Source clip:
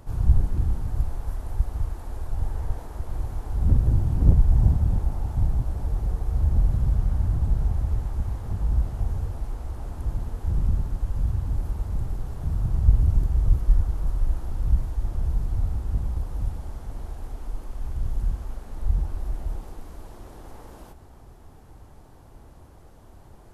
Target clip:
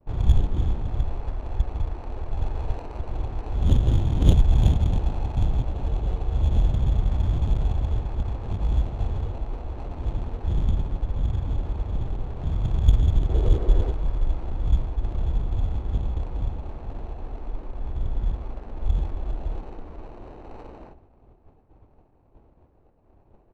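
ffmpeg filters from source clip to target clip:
ffmpeg -i in.wav -filter_complex "[0:a]acrusher=samples=13:mix=1:aa=0.000001,asettb=1/sr,asplit=3[link_01][link_02][link_03];[link_01]atrim=end=13.294[link_04];[link_02]atrim=start=13.29:end=13.92,asetpts=PTS-STARTPTS,afade=type=in:duration=0.004:curve=qsin,afade=type=out:start_time=0.626:duration=0.004:curve=qsin,equalizer=frequency=420:width=1.4:gain=13[link_05];[link_03]atrim=start=13.916[link_06];[link_04][link_05]acrossfade=duration=0.004:curve1=hsin:curve2=qsin[link_07];[link_07][link_06]acrossfade=duration=0.004:curve1=qsin:curve2=hsin,aresample=22050,aresample=44100,bass=frequency=250:gain=-7,treble=frequency=4000:gain=5,aecho=1:1:409|818|1227|1636:0.075|0.0427|0.0244|0.0139,agate=range=-33dB:threshold=-44dB:ratio=3:detection=peak,adynamicsmooth=sensitivity=5:basefreq=900,volume=7dB" out.wav

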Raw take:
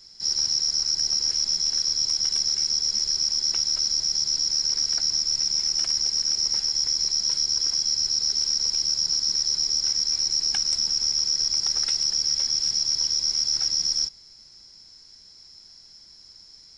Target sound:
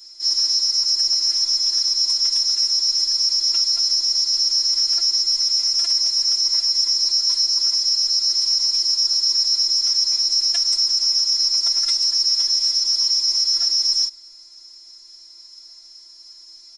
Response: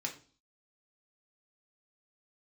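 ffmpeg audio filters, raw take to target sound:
-filter_complex "[0:a]aecho=1:1:6.7:0.85,acrossover=split=230|1400|1800[link_01][link_02][link_03][link_04];[link_02]crystalizer=i=5.5:c=0[link_05];[link_01][link_05][link_03][link_04]amix=inputs=4:normalize=0,afftfilt=real='hypot(re,im)*cos(PI*b)':imag='0':win_size=512:overlap=0.75,bass=frequency=250:gain=-7,treble=frequency=4000:gain=9"

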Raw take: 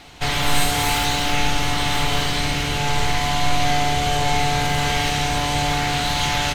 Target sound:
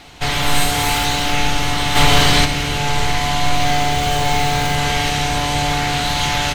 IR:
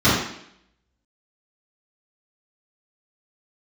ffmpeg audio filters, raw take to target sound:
-filter_complex "[0:a]asplit=3[link_01][link_02][link_03];[link_01]afade=type=out:start_time=1.95:duration=0.02[link_04];[link_02]acontrast=81,afade=type=in:start_time=1.95:duration=0.02,afade=type=out:start_time=2.44:duration=0.02[link_05];[link_03]afade=type=in:start_time=2.44:duration=0.02[link_06];[link_04][link_05][link_06]amix=inputs=3:normalize=0,asettb=1/sr,asplit=3[link_07][link_08][link_09];[link_07]atrim=end=3.454[link_10];[link_08]atrim=start=3.45:end=4.75,asetpts=PTS-STARTPTS,afade=type=in:duration=0.004:curve=qsin,afade=type=out:start_time=1.296:duration=0.004:curve=qsin,acrusher=bits=7:dc=4:mix=0:aa=0.000001[link_11];[link_09]atrim=start=4.746[link_12];[link_10][link_11]acrossfade=duration=0.004:curve1=hsin:curve2=qsin[link_13];[link_13][link_12]acrossfade=duration=0.004:curve1=qsin:curve2=hsin,volume=2.5dB"

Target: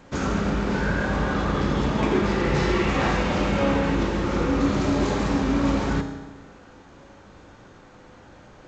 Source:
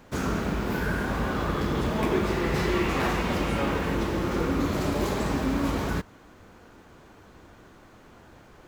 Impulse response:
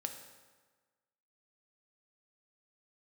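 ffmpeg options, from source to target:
-filter_complex "[1:a]atrim=start_sample=2205[link_01];[0:a][link_01]afir=irnorm=-1:irlink=0,volume=4dB" -ar 16000 -c:a g722

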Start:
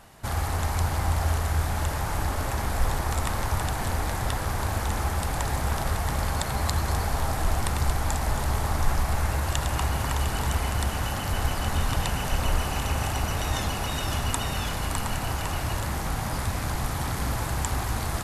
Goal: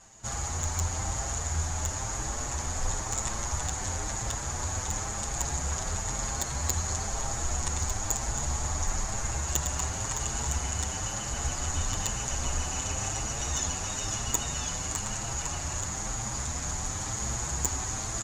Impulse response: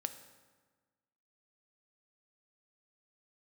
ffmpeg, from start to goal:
-filter_complex "[0:a]lowpass=frequency=6800:width_type=q:width=15,aeval=exprs='clip(val(0),-1,0.282)':channel_layout=same,asplit=2[link_01][link_02];[link_02]adelay=7.3,afreqshift=1[link_03];[link_01][link_03]amix=inputs=2:normalize=1,volume=-4dB"

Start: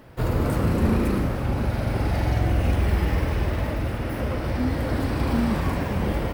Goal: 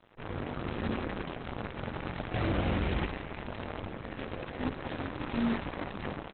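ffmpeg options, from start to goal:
ffmpeg -i in.wav -filter_complex "[0:a]flanger=delay=20:depth=3.1:speed=0.32,asettb=1/sr,asplit=3[link_01][link_02][link_03];[link_01]atrim=end=2.344[link_04];[link_02]atrim=start=2.34:end=3.07,asetpts=PTS-STARTPTS,afade=type=in:duration=0.004:curve=qsin,afade=type=out:start_time=0.726:duration=0.004:curve=qsin,acontrast=74[link_05];[link_03]atrim=start=3.066[link_06];[link_04][link_05]acrossfade=duration=0.004:curve1=hsin:curve2=qsin[link_07];[link_07][link_06]acrossfade=duration=0.004:curve1=qsin:curve2=hsin,highpass=frequency=170:poles=1,asplit=2[link_08][link_09];[link_09]aecho=0:1:52|73:0.266|0.316[link_10];[link_08][link_10]amix=inputs=2:normalize=0,acrusher=bits=5:dc=4:mix=0:aa=0.000001,lowpass=frequency=4100:width=0.5412,lowpass=frequency=4100:width=1.3066,alimiter=limit=-22dB:level=0:latency=1:release=17,dynaudnorm=framelen=550:gausssize=3:maxgain=4dB,volume=-4dB" -ar 48000 -c:a libopus -b:a 8k out.opus

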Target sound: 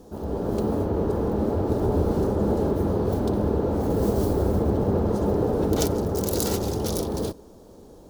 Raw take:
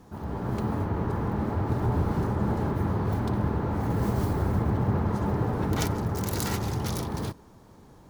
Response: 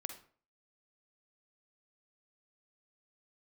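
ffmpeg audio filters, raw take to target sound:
-af "equalizer=frequency=125:width_type=o:width=1:gain=-10,equalizer=frequency=500:width_type=o:width=1:gain=7,equalizer=frequency=1000:width_type=o:width=1:gain=-7,equalizer=frequency=2000:width_type=o:width=1:gain=-12,volume=6dB"

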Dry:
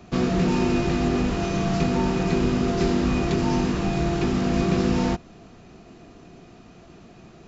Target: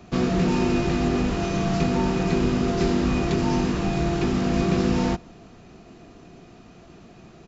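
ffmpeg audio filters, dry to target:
ffmpeg -i in.wav -filter_complex "[0:a]asplit=2[link_01][link_02];[link_02]adelay=163.3,volume=-29dB,highshelf=frequency=4000:gain=-3.67[link_03];[link_01][link_03]amix=inputs=2:normalize=0" out.wav

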